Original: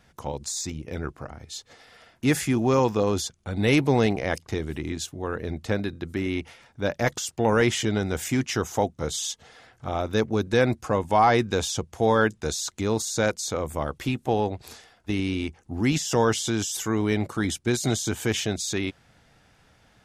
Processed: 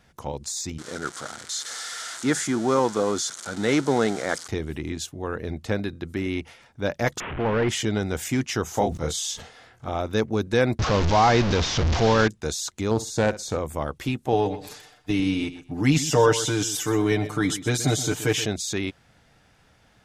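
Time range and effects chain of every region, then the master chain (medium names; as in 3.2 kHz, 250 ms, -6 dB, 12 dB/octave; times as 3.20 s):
0.78–4.48 s: zero-crossing glitches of -19.5 dBFS + cabinet simulation 190–7800 Hz, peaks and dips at 1.4 kHz +9 dB, 2.6 kHz -10 dB, 4.9 kHz -3 dB
7.20–7.69 s: one-bit delta coder 16 kbps, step -25.5 dBFS + hard clipper -17.5 dBFS + distance through air 170 m
8.64–9.90 s: doubling 25 ms -5.5 dB + decay stretcher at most 100 dB/s
10.79–12.28 s: one-bit delta coder 32 kbps, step -19.5 dBFS + bass shelf 120 Hz +9 dB
12.91–13.59 s: tilt EQ -1.5 dB/octave + flutter echo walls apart 10.3 m, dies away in 0.24 s + loudspeaker Doppler distortion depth 0.22 ms
14.32–18.46 s: comb 6.7 ms, depth 85% + feedback delay 125 ms, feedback 16%, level -13.5 dB
whole clip: none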